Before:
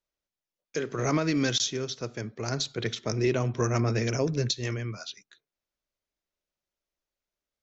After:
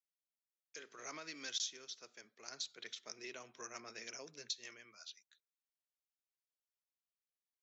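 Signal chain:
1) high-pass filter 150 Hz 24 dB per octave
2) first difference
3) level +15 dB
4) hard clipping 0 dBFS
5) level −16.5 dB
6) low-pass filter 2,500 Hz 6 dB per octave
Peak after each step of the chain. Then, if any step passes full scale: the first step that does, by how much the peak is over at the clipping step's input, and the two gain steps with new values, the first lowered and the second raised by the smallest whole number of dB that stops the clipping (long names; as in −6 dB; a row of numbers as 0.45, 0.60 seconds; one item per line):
−12.5, −17.5, −2.5, −2.5, −19.0, −26.0 dBFS
no step passes full scale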